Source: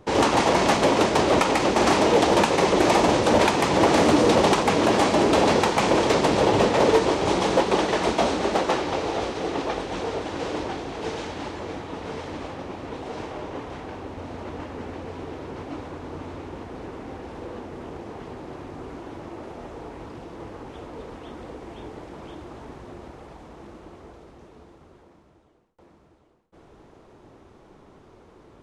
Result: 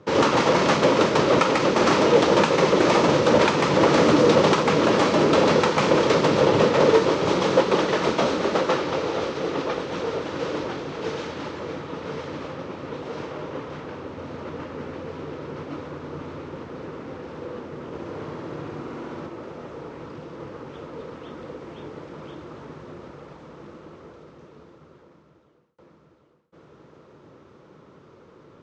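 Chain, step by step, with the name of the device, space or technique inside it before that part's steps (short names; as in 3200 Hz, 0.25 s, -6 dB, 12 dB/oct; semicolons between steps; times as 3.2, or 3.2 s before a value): 17.86–19.27 flutter echo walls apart 11.5 m, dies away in 1.3 s; car door speaker (speaker cabinet 100–6600 Hz, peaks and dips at 150 Hz +7 dB, 510 Hz +5 dB, 740 Hz -7 dB, 1300 Hz +5 dB)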